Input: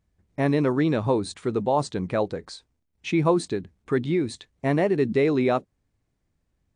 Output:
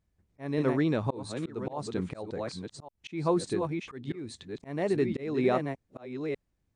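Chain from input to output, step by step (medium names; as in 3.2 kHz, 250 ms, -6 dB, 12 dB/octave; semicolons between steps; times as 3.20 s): chunks repeated in reverse 577 ms, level -7 dB; slow attack 269 ms; trim -4.5 dB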